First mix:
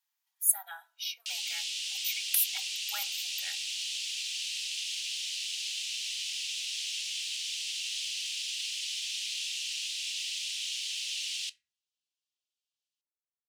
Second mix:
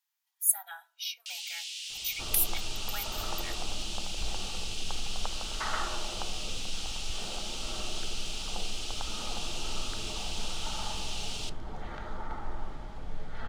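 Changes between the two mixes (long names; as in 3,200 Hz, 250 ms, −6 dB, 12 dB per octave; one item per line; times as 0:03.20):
first sound −4.0 dB
second sound: unmuted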